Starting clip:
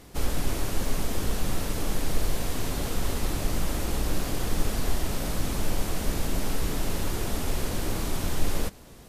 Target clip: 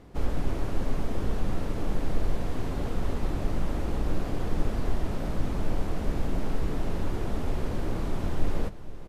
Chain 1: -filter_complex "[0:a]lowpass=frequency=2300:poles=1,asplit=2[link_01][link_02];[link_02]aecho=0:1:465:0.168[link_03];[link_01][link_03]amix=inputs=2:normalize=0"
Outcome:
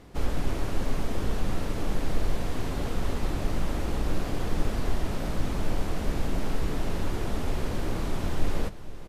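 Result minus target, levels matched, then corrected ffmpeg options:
2,000 Hz band +3.0 dB
-filter_complex "[0:a]lowpass=frequency=1100:poles=1,asplit=2[link_01][link_02];[link_02]aecho=0:1:465:0.168[link_03];[link_01][link_03]amix=inputs=2:normalize=0"

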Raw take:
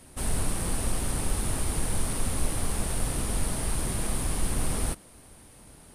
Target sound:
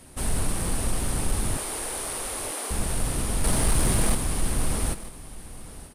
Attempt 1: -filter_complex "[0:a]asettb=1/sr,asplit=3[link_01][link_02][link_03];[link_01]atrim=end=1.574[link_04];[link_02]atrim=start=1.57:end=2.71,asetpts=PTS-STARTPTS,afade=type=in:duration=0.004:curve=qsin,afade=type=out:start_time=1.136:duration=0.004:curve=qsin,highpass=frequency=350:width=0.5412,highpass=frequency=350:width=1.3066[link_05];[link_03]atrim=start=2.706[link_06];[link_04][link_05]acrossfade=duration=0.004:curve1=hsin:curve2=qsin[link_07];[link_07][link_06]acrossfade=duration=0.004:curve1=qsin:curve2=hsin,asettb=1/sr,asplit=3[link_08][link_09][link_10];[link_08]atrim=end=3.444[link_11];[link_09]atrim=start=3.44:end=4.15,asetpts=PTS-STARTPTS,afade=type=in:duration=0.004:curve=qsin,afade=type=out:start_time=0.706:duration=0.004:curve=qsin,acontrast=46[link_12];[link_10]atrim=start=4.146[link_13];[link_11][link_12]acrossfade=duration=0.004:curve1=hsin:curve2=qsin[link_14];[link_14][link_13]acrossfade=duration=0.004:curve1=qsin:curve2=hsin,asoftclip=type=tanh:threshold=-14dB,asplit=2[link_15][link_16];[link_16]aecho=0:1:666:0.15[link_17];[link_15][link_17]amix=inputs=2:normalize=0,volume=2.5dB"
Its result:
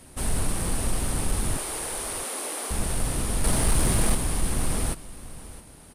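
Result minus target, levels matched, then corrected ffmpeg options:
echo 274 ms early
-filter_complex "[0:a]asettb=1/sr,asplit=3[link_01][link_02][link_03];[link_01]atrim=end=1.574[link_04];[link_02]atrim=start=1.57:end=2.71,asetpts=PTS-STARTPTS,afade=type=in:duration=0.004:curve=qsin,afade=type=out:start_time=1.136:duration=0.004:curve=qsin,highpass=frequency=350:width=0.5412,highpass=frequency=350:width=1.3066[link_05];[link_03]atrim=start=2.706[link_06];[link_04][link_05]acrossfade=duration=0.004:curve1=hsin:curve2=qsin[link_07];[link_07][link_06]acrossfade=duration=0.004:curve1=qsin:curve2=hsin,asettb=1/sr,asplit=3[link_08][link_09][link_10];[link_08]atrim=end=3.444[link_11];[link_09]atrim=start=3.44:end=4.15,asetpts=PTS-STARTPTS,afade=type=in:duration=0.004:curve=qsin,afade=type=out:start_time=0.706:duration=0.004:curve=qsin,acontrast=46[link_12];[link_10]atrim=start=4.146[link_13];[link_11][link_12]acrossfade=duration=0.004:curve1=hsin:curve2=qsin[link_14];[link_14][link_13]acrossfade=duration=0.004:curve1=qsin:curve2=hsin,asoftclip=type=tanh:threshold=-14dB,asplit=2[link_15][link_16];[link_16]aecho=0:1:940:0.15[link_17];[link_15][link_17]amix=inputs=2:normalize=0,volume=2.5dB"

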